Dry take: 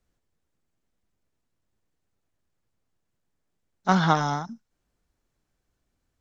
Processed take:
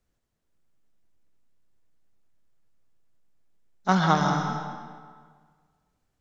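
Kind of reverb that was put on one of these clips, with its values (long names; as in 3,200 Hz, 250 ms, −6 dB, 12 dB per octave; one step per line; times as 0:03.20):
comb and all-pass reverb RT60 1.7 s, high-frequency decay 0.8×, pre-delay 95 ms, DRR 4.5 dB
level −1 dB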